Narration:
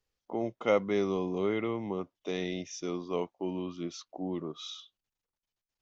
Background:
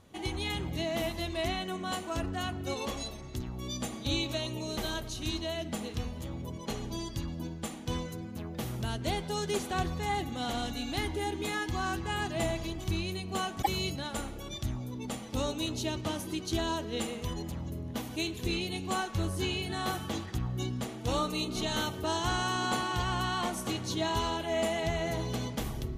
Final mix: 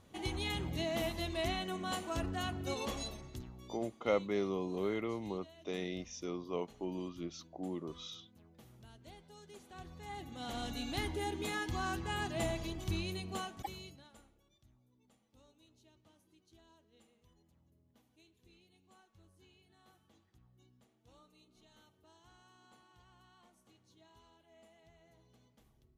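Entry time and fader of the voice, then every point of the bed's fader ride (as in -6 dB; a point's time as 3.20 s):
3.40 s, -5.5 dB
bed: 3.13 s -3.5 dB
4.02 s -23 dB
9.57 s -23 dB
10.74 s -4.5 dB
13.25 s -4.5 dB
14.55 s -33.5 dB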